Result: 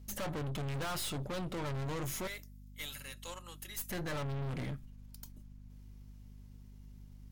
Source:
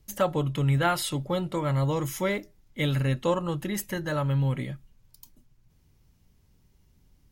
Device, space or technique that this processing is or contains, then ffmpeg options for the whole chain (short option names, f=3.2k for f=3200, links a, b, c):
valve amplifier with mains hum: -filter_complex "[0:a]asettb=1/sr,asplit=3[a][b][c];[a]atrim=end=2.274[d];[b]atrim=start=2.27:end=3.91,asetpts=PTS-STARTPTS,afade=t=in:d=0.004:c=qsin,afade=t=out:st=1.636:d=0.004:c=qsin,aderivative[e];[c]atrim=start=3.906[f];[d][e]acrossfade=d=0.004:c1=hsin:c2=qsin[g];[g][f]acrossfade=d=0.004:c1=qsin:c2=hsin,aeval=exprs='(tanh(89.1*val(0)+0.55)-tanh(0.55))/89.1':c=same,aeval=exprs='val(0)+0.002*(sin(2*PI*50*n/s)+sin(2*PI*2*50*n/s)/2+sin(2*PI*3*50*n/s)/3+sin(2*PI*4*50*n/s)/4+sin(2*PI*5*50*n/s)/5)':c=same,volume=2.5dB"